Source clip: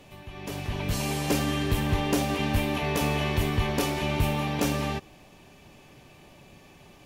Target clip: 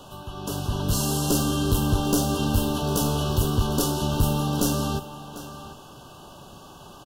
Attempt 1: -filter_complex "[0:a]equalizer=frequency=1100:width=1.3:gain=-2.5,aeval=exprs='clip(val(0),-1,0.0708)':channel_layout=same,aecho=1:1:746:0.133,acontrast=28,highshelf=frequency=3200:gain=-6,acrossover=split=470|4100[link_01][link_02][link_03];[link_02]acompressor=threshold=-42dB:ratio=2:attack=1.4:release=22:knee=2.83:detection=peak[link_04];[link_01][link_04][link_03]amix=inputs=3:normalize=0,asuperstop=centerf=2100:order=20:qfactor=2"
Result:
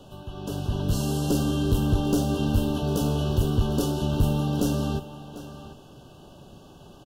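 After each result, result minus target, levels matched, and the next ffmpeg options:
8,000 Hz band −8.0 dB; 1,000 Hz band −4.0 dB
-filter_complex "[0:a]equalizer=frequency=1100:width=1.3:gain=-2.5,aeval=exprs='clip(val(0),-1,0.0708)':channel_layout=same,aecho=1:1:746:0.133,acontrast=28,highshelf=frequency=3200:gain=4.5,acrossover=split=470|4100[link_01][link_02][link_03];[link_02]acompressor=threshold=-42dB:ratio=2:attack=1.4:release=22:knee=2.83:detection=peak[link_04];[link_01][link_04][link_03]amix=inputs=3:normalize=0,asuperstop=centerf=2100:order=20:qfactor=2"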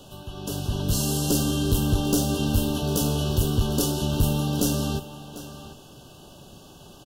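1,000 Hz band −5.0 dB
-filter_complex "[0:a]equalizer=frequency=1100:width=1.3:gain=8,aeval=exprs='clip(val(0),-1,0.0708)':channel_layout=same,aecho=1:1:746:0.133,acontrast=28,highshelf=frequency=3200:gain=4.5,acrossover=split=470|4100[link_01][link_02][link_03];[link_02]acompressor=threshold=-42dB:ratio=2:attack=1.4:release=22:knee=2.83:detection=peak[link_04];[link_01][link_04][link_03]amix=inputs=3:normalize=0,asuperstop=centerf=2100:order=20:qfactor=2"

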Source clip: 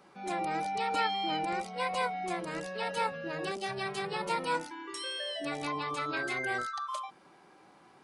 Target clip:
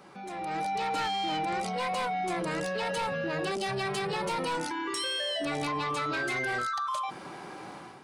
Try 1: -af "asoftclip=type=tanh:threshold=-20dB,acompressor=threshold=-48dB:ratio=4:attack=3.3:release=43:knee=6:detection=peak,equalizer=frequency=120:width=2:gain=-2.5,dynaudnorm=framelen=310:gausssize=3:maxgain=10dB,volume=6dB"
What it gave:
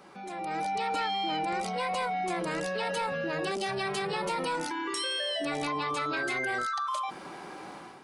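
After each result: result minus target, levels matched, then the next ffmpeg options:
soft clipping: distortion −12 dB; 125 Hz band −3.0 dB
-af "asoftclip=type=tanh:threshold=-29.5dB,acompressor=threshold=-48dB:ratio=4:attack=3.3:release=43:knee=6:detection=peak,equalizer=frequency=120:width=2:gain=-2.5,dynaudnorm=framelen=310:gausssize=3:maxgain=10dB,volume=6dB"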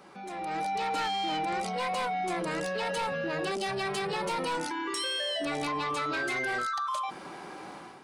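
125 Hz band −3.0 dB
-af "asoftclip=type=tanh:threshold=-29.5dB,acompressor=threshold=-48dB:ratio=4:attack=3.3:release=43:knee=6:detection=peak,equalizer=frequency=120:width=2:gain=4,dynaudnorm=framelen=310:gausssize=3:maxgain=10dB,volume=6dB"

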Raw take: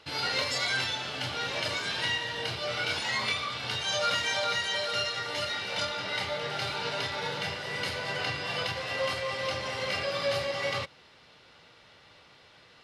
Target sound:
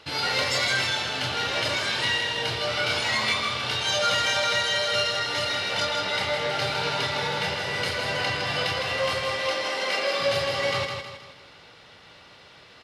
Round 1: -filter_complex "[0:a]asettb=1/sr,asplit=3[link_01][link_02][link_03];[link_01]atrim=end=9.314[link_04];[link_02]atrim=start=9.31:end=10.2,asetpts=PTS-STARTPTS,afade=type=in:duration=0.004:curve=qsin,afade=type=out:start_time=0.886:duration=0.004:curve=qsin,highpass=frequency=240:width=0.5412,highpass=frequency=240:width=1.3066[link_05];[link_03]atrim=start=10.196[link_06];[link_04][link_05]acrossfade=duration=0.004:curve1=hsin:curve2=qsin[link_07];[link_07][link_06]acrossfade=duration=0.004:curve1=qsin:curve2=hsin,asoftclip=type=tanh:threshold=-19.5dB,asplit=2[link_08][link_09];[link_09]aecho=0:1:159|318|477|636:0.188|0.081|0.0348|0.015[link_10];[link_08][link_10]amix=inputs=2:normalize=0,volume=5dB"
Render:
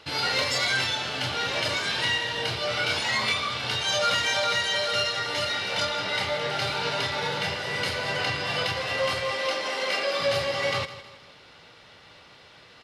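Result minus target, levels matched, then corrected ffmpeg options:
echo-to-direct −9 dB
-filter_complex "[0:a]asettb=1/sr,asplit=3[link_01][link_02][link_03];[link_01]atrim=end=9.314[link_04];[link_02]atrim=start=9.31:end=10.2,asetpts=PTS-STARTPTS,afade=type=in:duration=0.004:curve=qsin,afade=type=out:start_time=0.886:duration=0.004:curve=qsin,highpass=frequency=240:width=0.5412,highpass=frequency=240:width=1.3066[link_05];[link_03]atrim=start=10.196[link_06];[link_04][link_05]acrossfade=duration=0.004:curve1=hsin:curve2=qsin[link_07];[link_07][link_06]acrossfade=duration=0.004:curve1=qsin:curve2=hsin,asoftclip=type=tanh:threshold=-19.5dB,asplit=2[link_08][link_09];[link_09]aecho=0:1:159|318|477|636|795:0.531|0.228|0.0982|0.0422|0.0181[link_10];[link_08][link_10]amix=inputs=2:normalize=0,volume=5dB"

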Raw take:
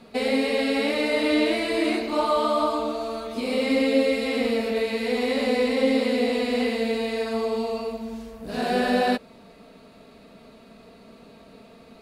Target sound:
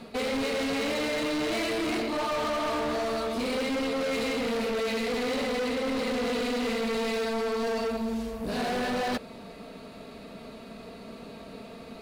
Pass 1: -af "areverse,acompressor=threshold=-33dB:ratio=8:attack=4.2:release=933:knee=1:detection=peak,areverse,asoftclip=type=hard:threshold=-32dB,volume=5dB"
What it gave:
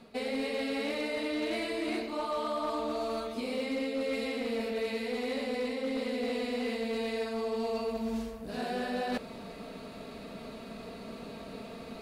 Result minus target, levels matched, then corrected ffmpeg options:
downward compressor: peak gain reduction +9.5 dB
-af "areverse,acompressor=threshold=-22dB:ratio=8:attack=4.2:release=933:knee=1:detection=peak,areverse,asoftclip=type=hard:threshold=-32dB,volume=5dB"

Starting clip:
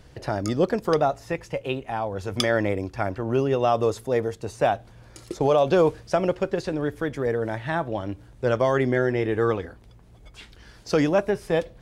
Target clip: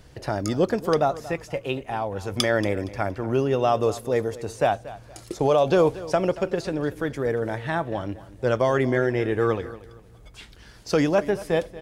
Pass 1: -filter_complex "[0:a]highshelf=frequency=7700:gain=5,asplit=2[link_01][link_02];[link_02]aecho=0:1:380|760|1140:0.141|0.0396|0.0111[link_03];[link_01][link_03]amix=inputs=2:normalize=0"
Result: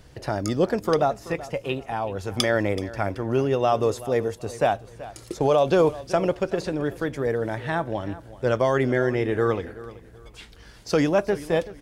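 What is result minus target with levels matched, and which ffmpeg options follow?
echo 147 ms late
-filter_complex "[0:a]highshelf=frequency=7700:gain=5,asplit=2[link_01][link_02];[link_02]aecho=0:1:233|466|699:0.141|0.0396|0.0111[link_03];[link_01][link_03]amix=inputs=2:normalize=0"

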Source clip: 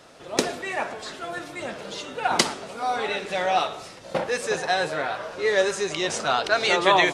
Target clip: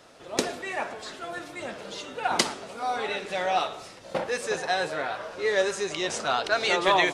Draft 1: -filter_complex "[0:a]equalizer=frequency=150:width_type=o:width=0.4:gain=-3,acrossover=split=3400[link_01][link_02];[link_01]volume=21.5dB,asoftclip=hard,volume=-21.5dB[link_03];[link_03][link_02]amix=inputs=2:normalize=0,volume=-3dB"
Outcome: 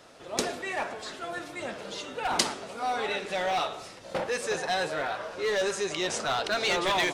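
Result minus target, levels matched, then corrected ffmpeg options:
gain into a clipping stage and back: distortion +18 dB
-filter_complex "[0:a]equalizer=frequency=150:width_type=o:width=0.4:gain=-3,acrossover=split=3400[link_01][link_02];[link_01]volume=10dB,asoftclip=hard,volume=-10dB[link_03];[link_03][link_02]amix=inputs=2:normalize=0,volume=-3dB"

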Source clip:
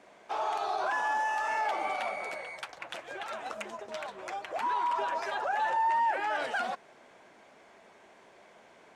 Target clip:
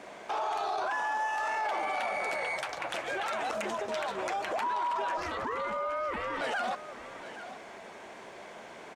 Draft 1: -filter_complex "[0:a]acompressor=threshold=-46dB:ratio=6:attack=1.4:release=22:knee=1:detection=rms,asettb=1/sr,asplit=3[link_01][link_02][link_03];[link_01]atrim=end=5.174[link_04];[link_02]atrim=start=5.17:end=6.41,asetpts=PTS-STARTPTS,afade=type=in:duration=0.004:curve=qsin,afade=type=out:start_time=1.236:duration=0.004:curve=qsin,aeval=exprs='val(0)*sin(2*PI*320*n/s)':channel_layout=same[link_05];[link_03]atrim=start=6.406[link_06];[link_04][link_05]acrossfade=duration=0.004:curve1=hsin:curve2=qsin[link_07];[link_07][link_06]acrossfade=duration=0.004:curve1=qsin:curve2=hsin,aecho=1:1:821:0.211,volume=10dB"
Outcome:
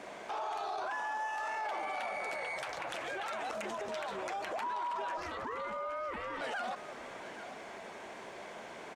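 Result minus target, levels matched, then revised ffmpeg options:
downward compressor: peak gain reduction +5.5 dB
-filter_complex "[0:a]acompressor=threshold=-39.5dB:ratio=6:attack=1.4:release=22:knee=1:detection=rms,asettb=1/sr,asplit=3[link_01][link_02][link_03];[link_01]atrim=end=5.174[link_04];[link_02]atrim=start=5.17:end=6.41,asetpts=PTS-STARTPTS,afade=type=in:duration=0.004:curve=qsin,afade=type=out:start_time=1.236:duration=0.004:curve=qsin,aeval=exprs='val(0)*sin(2*PI*320*n/s)':channel_layout=same[link_05];[link_03]atrim=start=6.406[link_06];[link_04][link_05]acrossfade=duration=0.004:curve1=hsin:curve2=qsin[link_07];[link_07][link_06]acrossfade=duration=0.004:curve1=qsin:curve2=hsin,aecho=1:1:821:0.211,volume=10dB"

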